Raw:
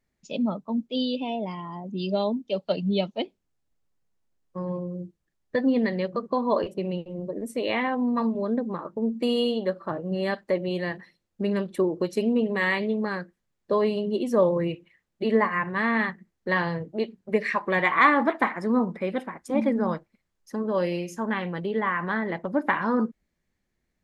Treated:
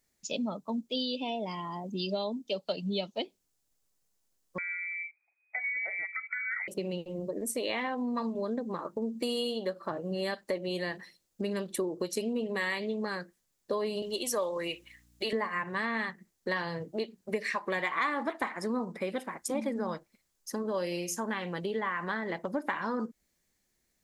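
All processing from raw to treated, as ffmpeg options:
-filter_complex "[0:a]asettb=1/sr,asplit=3[s0][s1][s2];[s0]atrim=end=4.584[s3];[s1]atrim=start=4.58:end=6.68,asetpts=PTS-STARTPTS,afade=t=in:d=0.004:c=qsin,afade=t=out:st=2.096:d=0.004:c=qsin,acompressor=threshold=0.0126:ratio=2:attack=3.2:release=140:knee=1:detection=peak,lowpass=f=2100:t=q:w=0.5098,lowpass=f=2100:t=q:w=0.6013,lowpass=f=2100:t=q:w=0.9,lowpass=f=2100:t=q:w=2.563,afreqshift=-2500[s4];[s2]atrim=start=6.676[s5];[s3][s4]acrossfade=d=0.004:c1=hsin:c2=qsin[s6];[s6][s5]acrossfade=d=0.004:c1=qsin:c2=hsin,asettb=1/sr,asplit=3[s7][s8][s9];[s7]atrim=end=14.024[s10];[s8]atrim=start=14.02:end=15.33,asetpts=PTS-STARTPTS,afade=t=in:d=0.004:c=qsin,afade=t=out:st=1.306:d=0.004:c=qsin,highpass=f=1300:p=1,acontrast=70,aeval=exprs='val(0)+0.00112*(sin(2*PI*60*n/s)+sin(2*PI*2*60*n/s)/2+sin(2*PI*3*60*n/s)/3+sin(2*PI*4*60*n/s)/4+sin(2*PI*5*60*n/s)/5)':c=same[s11];[s9]atrim=start=15.326[s12];[s10][s11]acrossfade=d=0.004:c1=hsin:c2=qsin[s13];[s13][s12]acrossfade=d=0.004:c1=qsin:c2=hsin,bass=f=250:g=-5,treble=f=4000:g=13,acompressor=threshold=0.0282:ratio=3"

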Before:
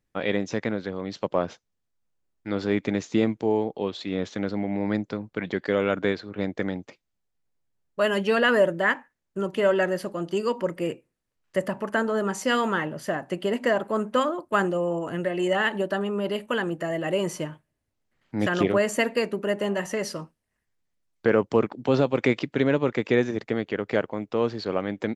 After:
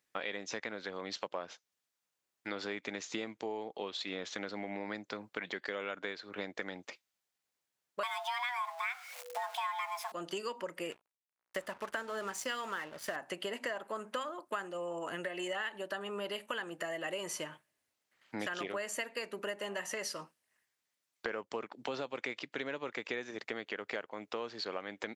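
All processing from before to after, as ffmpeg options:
-filter_complex "[0:a]asettb=1/sr,asplit=3[s0][s1][s2];[s0]atrim=end=8.034[s3];[s1]atrim=start=8.03:end=10.12,asetpts=PTS-STARTPTS,afade=t=in:d=0.004:c=qsin,afade=t=out:st=2.086:d=0.004:c=qsin,aeval=exprs='val(0)+0.5*0.015*sgn(val(0))':c=same,afreqshift=490[s4];[s2]atrim=start=10.116[s5];[s3][s4]acrossfade=d=0.004:c1=hsin:c2=qsin[s6];[s6][s5]acrossfade=d=0.004:c1=qsin:c2=hsin,asettb=1/sr,asplit=3[s7][s8][s9];[s7]atrim=end=10.914[s10];[s8]atrim=start=10.91:end=13.16,asetpts=PTS-STARTPTS,afade=t=in:d=0.004:c=qsin,afade=t=out:st=2.246:d=0.004:c=qsin,aeval=exprs='val(0)+0.00447*(sin(2*PI*60*n/s)+sin(2*PI*2*60*n/s)/2+sin(2*PI*3*60*n/s)/3+sin(2*PI*4*60*n/s)/4+sin(2*PI*5*60*n/s)/5)':c=same,aeval=exprs='sgn(val(0))*max(abs(val(0))-0.00708,0)':c=same[s11];[s9]atrim=start=13.156[s12];[s10][s11]acrossfade=d=0.004:c1=hsin:c2=qsin[s13];[s13][s12]acrossfade=d=0.004:c1=qsin:c2=hsin,highpass=f=1300:p=1,acompressor=threshold=0.00891:ratio=6,volume=1.78"

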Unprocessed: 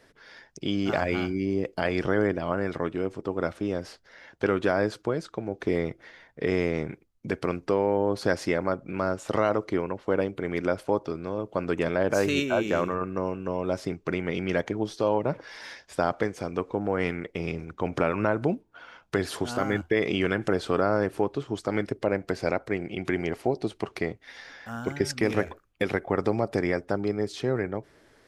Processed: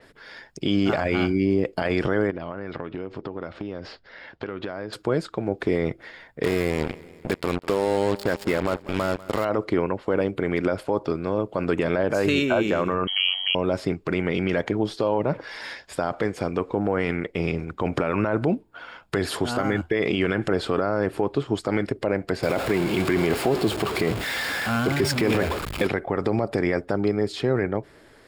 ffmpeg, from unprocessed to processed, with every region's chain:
-filter_complex "[0:a]asettb=1/sr,asplit=3[s0][s1][s2];[s0]atrim=end=2.304[s3];[s1]atrim=start=2.3:end=4.93,asetpts=PTS-STARTPTS,afade=t=in:d=0.004:c=qsin,afade=t=out:st=2.626:d=0.004:c=qsin,lowpass=f=5000:w=0.5412,lowpass=f=5000:w=1.3066,acompressor=threshold=0.02:ratio=8:attack=3.2:release=140:knee=1:detection=peak[s4];[s2]atrim=start=4.926[s5];[s3][s4]acrossfade=d=0.004:c1=hsin:c2=qsin[s6];[s6][s5]acrossfade=d=0.004:c1=qsin:c2=hsin,asettb=1/sr,asplit=3[s7][s8][s9];[s7]atrim=end=6.434[s10];[s8]atrim=start=6.43:end=9.45,asetpts=PTS-STARTPTS,afade=t=in:d=0.004:c=qsin,afade=t=out:st=3.016:d=0.004:c=qsin,acrusher=bits=4:mix=0:aa=0.5,aecho=1:1:194|388|582|776:0.0708|0.0389|0.0214|0.0118,atrim=end_sample=133182[s11];[s9]atrim=start=9.446[s12];[s10][s11]acrossfade=d=0.004:c1=hsin:c2=qsin[s13];[s13][s12]acrossfade=d=0.004:c1=qsin:c2=hsin,asettb=1/sr,asplit=3[s14][s15][s16];[s14]atrim=end=13.074[s17];[s15]atrim=start=13.07:end=13.55,asetpts=PTS-STARTPTS,afade=t=in:d=0.004:c=qsin,afade=t=out:st=0.476:d=0.004:c=qsin,lowpass=f=2900:t=q:w=0.5098,lowpass=f=2900:t=q:w=0.6013,lowpass=f=2900:t=q:w=0.9,lowpass=f=2900:t=q:w=2.563,afreqshift=-3400,bandreject=f=650:w=7.3[s18];[s16]atrim=start=13.546[s19];[s17][s18]acrossfade=d=0.004:c1=hsin:c2=qsin[s20];[s20][s19]acrossfade=d=0.004:c1=qsin:c2=hsin,asettb=1/sr,asplit=3[s21][s22][s23];[s21]atrim=end=22.434[s24];[s22]atrim=start=22.43:end=25.87,asetpts=PTS-STARTPTS,afade=t=in:d=0.004:c=qsin,afade=t=out:st=3.436:d=0.004:c=qsin,aeval=exprs='val(0)+0.5*0.0355*sgn(val(0))':c=same,highpass=44,bandreject=f=1900:w=20[s25];[s23]atrim=start=25.866[s26];[s24][s25]acrossfade=d=0.004:c1=hsin:c2=qsin[s27];[s27][s26]acrossfade=d=0.004:c1=qsin:c2=hsin,bandreject=f=6000:w=5.9,alimiter=limit=0.126:level=0:latency=1:release=30,adynamicequalizer=threshold=0.00251:dfrequency=6000:dqfactor=0.7:tfrequency=6000:tqfactor=0.7:attack=5:release=100:ratio=0.375:range=2.5:mode=cutabove:tftype=highshelf,volume=2.11"

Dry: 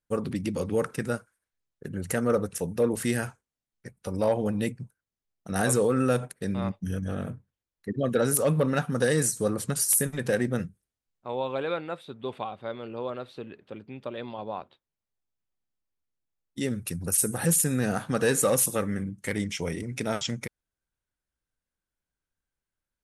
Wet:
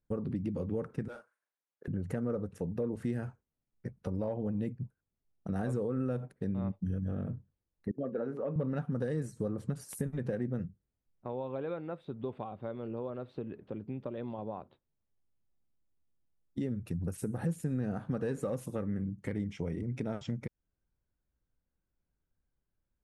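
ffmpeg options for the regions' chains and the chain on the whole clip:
-filter_complex "[0:a]asettb=1/sr,asplit=3[s0][s1][s2];[s0]atrim=end=1.084[s3];[s1]atrim=start=1.08:end=1.88,asetpts=PTS-STARTPTS,afade=t=in:d=0.004:c=qsin,afade=t=out:st=0.796:d=0.004:c=qsin,highpass=740,asoftclip=type=hard:threshold=0.0211,asplit=2[s4][s5];[s5]adelay=41,volume=0.355[s6];[s4][s6]amix=inputs=2:normalize=0,atrim=end_sample=35280[s7];[s2]atrim=start=1.876[s8];[s3][s7]acrossfade=d=0.004:c1=hsin:c2=qsin[s9];[s9][s8]acrossfade=d=0.004:c1=qsin:c2=hsin,asettb=1/sr,asplit=3[s10][s11][s12];[s10]atrim=end=7.914[s13];[s11]atrim=start=7.91:end=8.56,asetpts=PTS-STARTPTS,afade=t=in:d=0.004:c=qsin,afade=t=out:st=0.646:d=0.004:c=qsin,agate=range=0.282:threshold=0.0251:ratio=16:release=100:detection=peak,highpass=250,lowpass=2000,bandreject=f=60:t=h:w=6,bandreject=f=120:t=h:w=6,bandreject=f=180:t=h:w=6,bandreject=f=240:t=h:w=6,bandreject=f=300:t=h:w=6,bandreject=f=360:t=h:w=6,bandreject=f=420:t=h:w=6,bandreject=f=480:t=h:w=6,bandreject=f=540:t=h:w=6[s14];[s12]atrim=start=8.556[s15];[s13][s14]acrossfade=d=0.004:c1=hsin:c2=qsin[s16];[s16][s15]acrossfade=d=0.004:c1=qsin:c2=hsin,lowpass=f=1100:p=1,acompressor=threshold=0.00708:ratio=2.5,lowshelf=f=440:g=8.5"

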